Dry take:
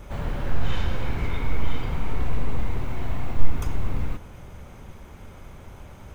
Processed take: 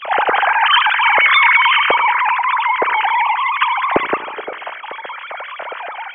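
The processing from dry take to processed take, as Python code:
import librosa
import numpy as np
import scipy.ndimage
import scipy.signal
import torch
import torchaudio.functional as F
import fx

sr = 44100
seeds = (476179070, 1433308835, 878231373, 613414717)

y = fx.sine_speech(x, sr)
y = y + 10.0 ** (-22.0 / 20.0) * np.pad(y, (int(87 * sr / 1000.0), 0))[:len(y)]
y = fx.rev_spring(y, sr, rt60_s=1.3, pass_ms=(34,), chirp_ms=50, drr_db=17.0)
y = y * 10.0 ** (2.0 / 20.0)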